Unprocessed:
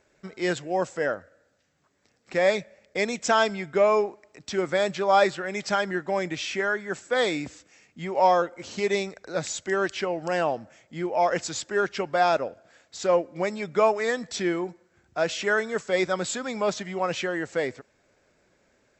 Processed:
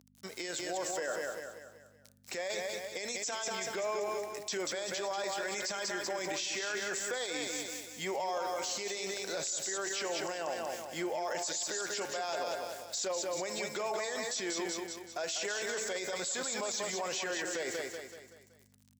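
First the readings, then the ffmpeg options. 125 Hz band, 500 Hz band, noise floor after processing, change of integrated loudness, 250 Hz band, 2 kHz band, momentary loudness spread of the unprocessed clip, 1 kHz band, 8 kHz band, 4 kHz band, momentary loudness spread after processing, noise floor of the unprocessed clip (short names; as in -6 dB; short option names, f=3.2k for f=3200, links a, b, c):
-16.0 dB, -11.5 dB, -62 dBFS, -9.5 dB, -12.0 dB, -9.0 dB, 10 LU, -12.5 dB, +2.5 dB, -2.5 dB, 5 LU, -67 dBFS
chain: -filter_complex "[0:a]bandreject=f=110:t=h:w=4,bandreject=f=220:t=h:w=4,bandreject=f=330:t=h:w=4,bandreject=f=440:t=h:w=4,bandreject=f=550:t=h:w=4,bandreject=f=660:t=h:w=4,bandreject=f=770:t=h:w=4,bandreject=f=880:t=h:w=4,bandreject=f=990:t=h:w=4,bandreject=f=1.1k:t=h:w=4,bandreject=f=1.21k:t=h:w=4,bandreject=f=1.32k:t=h:w=4,bandreject=f=1.43k:t=h:w=4,bandreject=f=1.54k:t=h:w=4,bandreject=f=1.65k:t=h:w=4,bandreject=f=1.76k:t=h:w=4,bandreject=f=1.87k:t=h:w=4,bandreject=f=1.98k:t=h:w=4,bandreject=f=2.09k:t=h:w=4,bandreject=f=2.2k:t=h:w=4,bandreject=f=2.31k:t=h:w=4,bandreject=f=2.42k:t=h:w=4,bandreject=f=2.53k:t=h:w=4,bandreject=f=2.64k:t=h:w=4,bandreject=f=2.75k:t=h:w=4,bandreject=f=2.86k:t=h:w=4,bandreject=f=2.97k:t=h:w=4,bandreject=f=3.08k:t=h:w=4,acompressor=threshold=-26dB:ratio=6,aeval=exprs='val(0)*gte(abs(val(0)),0.0015)':c=same,bandreject=f=1.3k:w=16,aeval=exprs='val(0)+0.00355*(sin(2*PI*50*n/s)+sin(2*PI*2*50*n/s)/2+sin(2*PI*3*50*n/s)/3+sin(2*PI*4*50*n/s)/4+sin(2*PI*5*50*n/s)/5)':c=same,highpass=84,bass=f=250:g=-15,treble=f=4k:g=14,asplit=2[a][b];[b]aecho=0:1:189|378|567|756|945:0.473|0.208|0.0916|0.0403|0.0177[c];[a][c]amix=inputs=2:normalize=0,alimiter=level_in=3dB:limit=-24dB:level=0:latency=1:release=19,volume=-3dB"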